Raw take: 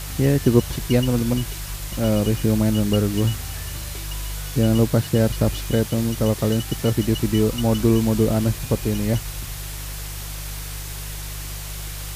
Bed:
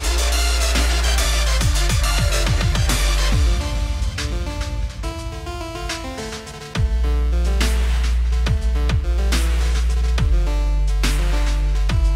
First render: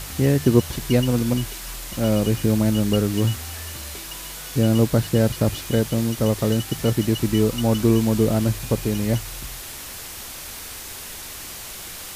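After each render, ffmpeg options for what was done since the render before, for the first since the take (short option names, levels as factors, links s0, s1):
-af "bandreject=f=50:t=h:w=4,bandreject=f=100:t=h:w=4,bandreject=f=150:t=h:w=4"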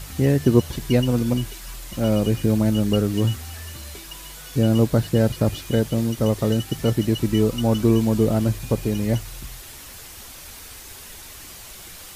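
-af "afftdn=nr=6:nf=-36"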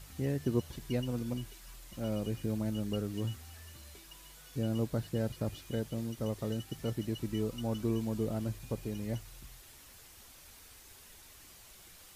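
-af "volume=0.178"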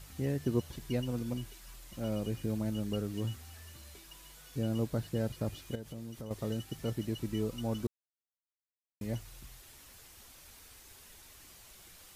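-filter_complex "[0:a]asettb=1/sr,asplit=3[s0][s1][s2];[s0]atrim=end=5.754[s3];[s1]atrim=start=5.75:end=6.31,asetpts=PTS-STARTPTS,afade=t=in:d=0.004:c=qsin,afade=t=out:st=0.556:d=0.004:c=qsin,acompressor=threshold=0.01:ratio=5:attack=3.2:release=140:knee=1:detection=peak[s4];[s2]atrim=start=6.306[s5];[s3][s4]acrossfade=d=0.004:c1=hsin:c2=qsin[s6];[s6][s5]acrossfade=d=0.004:c1=qsin:c2=hsin,asplit=3[s7][s8][s9];[s7]atrim=end=7.87,asetpts=PTS-STARTPTS,afade=t=out:st=7.866:d=0.004:c=hsin[s10];[s8]atrim=start=7.87:end=9.01,asetpts=PTS-STARTPTS,volume=0[s11];[s9]atrim=start=9.01,asetpts=PTS-STARTPTS,afade=t=in:d=0.004:c=hsin[s12];[s10][s11][s12]concat=n=3:v=0:a=1"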